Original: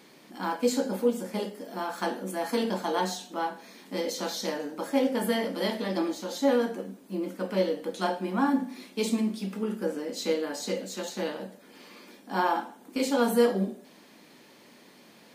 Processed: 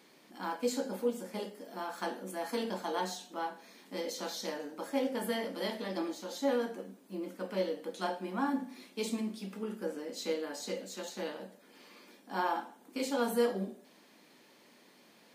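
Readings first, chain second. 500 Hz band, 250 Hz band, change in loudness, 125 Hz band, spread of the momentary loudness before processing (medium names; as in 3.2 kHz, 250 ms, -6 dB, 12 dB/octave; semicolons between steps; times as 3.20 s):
-6.5 dB, -8.0 dB, -7.0 dB, no reading, 10 LU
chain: bass shelf 150 Hz -8 dB; trim -6 dB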